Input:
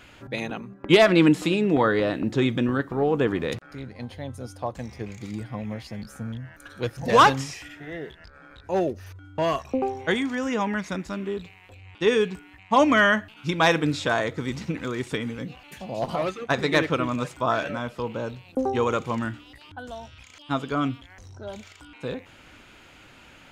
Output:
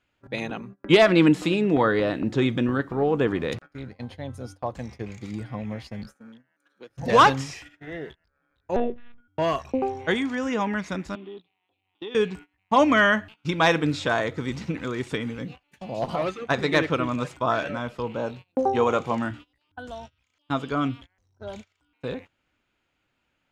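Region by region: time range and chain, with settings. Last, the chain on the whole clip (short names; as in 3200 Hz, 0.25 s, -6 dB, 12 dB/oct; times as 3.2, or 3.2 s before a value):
6.14–6.9 HPF 200 Hz 24 dB/oct + notch 680 Hz, Q 19 + compressor 12:1, threshold -37 dBFS
8.76–9.28 bell 110 Hz +5 dB 0.53 oct + monotone LPC vocoder at 8 kHz 240 Hz
11.15–12.15 compressor 3:1, threshold -39 dBFS + speaker cabinet 210–4100 Hz, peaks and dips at 330 Hz +6 dB, 510 Hz -5 dB, 810 Hz +6 dB, 1600 Hz -8 dB, 2200 Hz -4 dB, 3400 Hz +9 dB
18.16–19.31 HPF 91 Hz + doubler 21 ms -13 dB + dynamic EQ 730 Hz, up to +8 dB, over -43 dBFS, Q 2.6
whole clip: gate -40 dBFS, range -24 dB; high shelf 9500 Hz -8.5 dB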